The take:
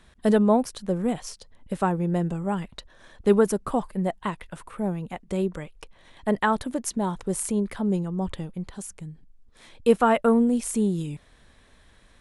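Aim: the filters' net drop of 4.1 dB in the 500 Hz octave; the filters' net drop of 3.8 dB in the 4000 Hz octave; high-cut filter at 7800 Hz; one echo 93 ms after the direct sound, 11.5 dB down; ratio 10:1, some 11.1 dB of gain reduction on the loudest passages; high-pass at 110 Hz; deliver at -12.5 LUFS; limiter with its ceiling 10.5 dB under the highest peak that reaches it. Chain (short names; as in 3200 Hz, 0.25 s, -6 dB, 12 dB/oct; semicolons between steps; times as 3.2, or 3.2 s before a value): HPF 110 Hz; LPF 7800 Hz; bell 500 Hz -5 dB; bell 4000 Hz -5 dB; compressor 10:1, threshold -28 dBFS; limiter -29 dBFS; echo 93 ms -11.5 dB; gain +25.5 dB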